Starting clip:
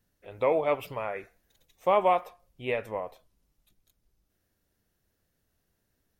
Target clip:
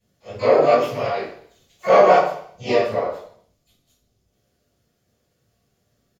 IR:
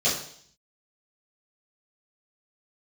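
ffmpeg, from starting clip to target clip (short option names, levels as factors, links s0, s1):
-filter_complex "[0:a]flanger=delay=17:depth=6.6:speed=2.7,asplit=4[s0][s1][s2][s3];[s1]asetrate=37084,aresample=44100,atempo=1.18921,volume=0.501[s4];[s2]asetrate=52444,aresample=44100,atempo=0.840896,volume=0.398[s5];[s3]asetrate=88200,aresample=44100,atempo=0.5,volume=0.398[s6];[s0][s4][s5][s6]amix=inputs=4:normalize=0[s7];[1:a]atrim=start_sample=2205[s8];[s7][s8]afir=irnorm=-1:irlink=0,volume=0.631"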